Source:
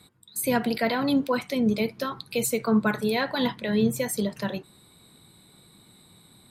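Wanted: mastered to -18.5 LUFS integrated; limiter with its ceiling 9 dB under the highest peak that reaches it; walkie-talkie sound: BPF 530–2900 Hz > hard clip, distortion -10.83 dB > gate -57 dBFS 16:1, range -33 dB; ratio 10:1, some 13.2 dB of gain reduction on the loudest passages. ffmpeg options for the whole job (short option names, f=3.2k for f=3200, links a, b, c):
-af "acompressor=threshold=-31dB:ratio=10,alimiter=level_in=3.5dB:limit=-24dB:level=0:latency=1,volume=-3.5dB,highpass=530,lowpass=2.9k,asoftclip=type=hard:threshold=-39.5dB,agate=range=-33dB:threshold=-57dB:ratio=16,volume=27dB"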